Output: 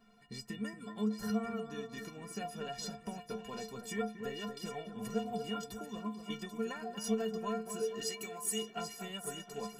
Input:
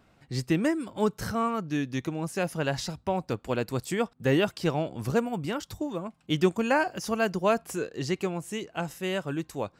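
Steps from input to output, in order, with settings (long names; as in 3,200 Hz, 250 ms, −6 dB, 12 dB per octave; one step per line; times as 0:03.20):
downward compressor, threshold −33 dBFS, peak gain reduction 15.5 dB
0:08.01–0:08.62: RIAA equalisation recording
stiff-string resonator 210 Hz, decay 0.33 s, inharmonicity 0.03
on a send: echo with a time of its own for lows and highs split 1,800 Hz, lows 234 ms, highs 787 ms, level −8.5 dB
on the sum: level +10.5 dB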